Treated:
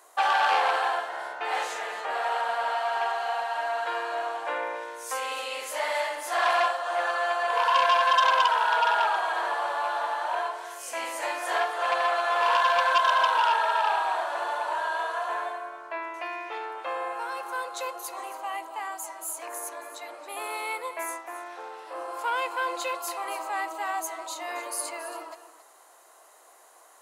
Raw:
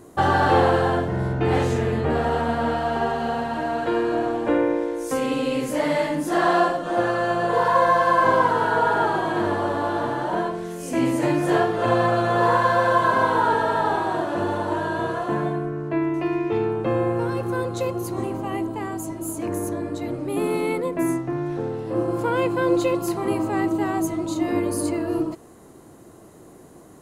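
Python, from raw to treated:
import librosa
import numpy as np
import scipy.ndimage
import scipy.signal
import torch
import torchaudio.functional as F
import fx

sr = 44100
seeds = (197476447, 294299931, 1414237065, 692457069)

y = scipy.signal.sosfilt(scipy.signal.butter(4, 710.0, 'highpass', fs=sr, output='sos'), x)
y = y + 10.0 ** (-13.5 / 20.0) * np.pad(y, (int(274 * sr / 1000.0), 0))[:len(y)]
y = fx.transformer_sat(y, sr, knee_hz=2400.0)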